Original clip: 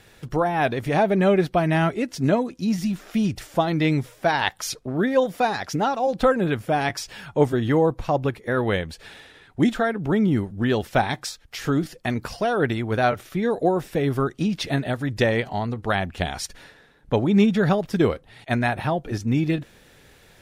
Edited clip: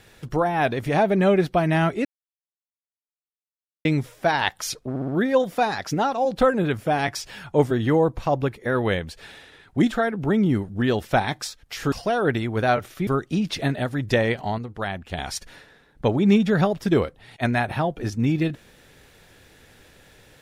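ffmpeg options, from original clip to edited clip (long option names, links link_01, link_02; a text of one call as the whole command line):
ffmpeg -i in.wav -filter_complex "[0:a]asplit=10[link_01][link_02][link_03][link_04][link_05][link_06][link_07][link_08][link_09][link_10];[link_01]atrim=end=2.05,asetpts=PTS-STARTPTS,afade=type=out:start_time=2.046:duration=0.004:curve=hsin[link_11];[link_02]atrim=start=2.05:end=3.85,asetpts=PTS-STARTPTS,volume=0[link_12];[link_03]atrim=start=3.85:end=4.962,asetpts=PTS-STARTPTS,afade=type=in:duration=0.004:curve=hsin[link_13];[link_04]atrim=start=4.898:end=4.962[link_14];[link_05]atrim=start=4.898:end=4.962[link_15];[link_06]atrim=start=4.898:end=11.742[link_16];[link_07]atrim=start=12.268:end=13.422[link_17];[link_08]atrim=start=14.148:end=15.662[link_18];[link_09]atrim=start=15.658:end=16.262,asetpts=PTS-STARTPTS,volume=-5.5dB[link_19];[link_10]atrim=start=16.258[link_20];[link_11][link_12][link_13]concat=n=3:v=0:a=1[link_21];[link_21][link_14]acrossfade=duration=0.004:curve1=hsin:curve2=hsin[link_22];[link_22][link_15]acrossfade=duration=0.004:curve1=hsin:curve2=hsin[link_23];[link_23][link_16]acrossfade=duration=0.004:curve1=hsin:curve2=hsin[link_24];[link_24][link_17]acrossfade=duration=0.004:curve1=hsin:curve2=hsin[link_25];[link_25][link_18]acrossfade=duration=0.004:curve1=hsin:curve2=hsin[link_26];[link_26][link_19]acrossfade=duration=0.004:curve1=hsin:curve2=hsin[link_27];[link_27][link_20]acrossfade=duration=0.004:curve1=hsin:curve2=hsin" out.wav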